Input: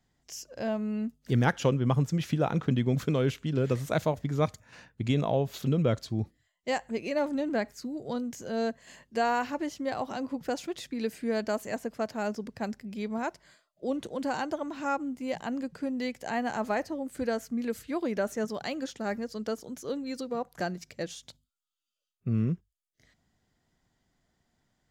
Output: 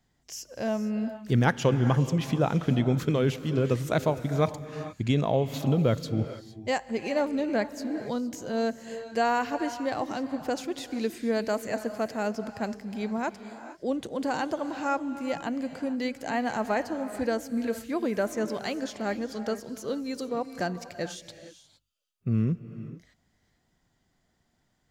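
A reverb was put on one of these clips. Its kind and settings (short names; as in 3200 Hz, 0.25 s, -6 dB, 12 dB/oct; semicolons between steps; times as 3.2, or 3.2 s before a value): non-linear reverb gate 0.49 s rising, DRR 11 dB; gain +2 dB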